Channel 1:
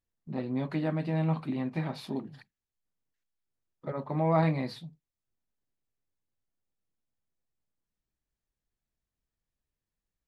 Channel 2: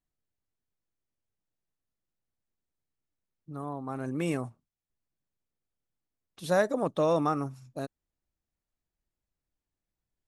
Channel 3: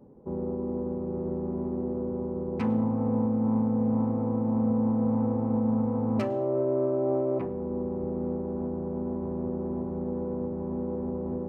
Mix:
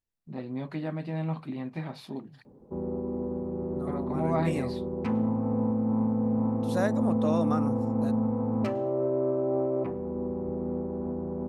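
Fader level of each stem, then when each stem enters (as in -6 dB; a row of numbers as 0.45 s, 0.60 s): -3.0 dB, -4.0 dB, -1.0 dB; 0.00 s, 0.25 s, 2.45 s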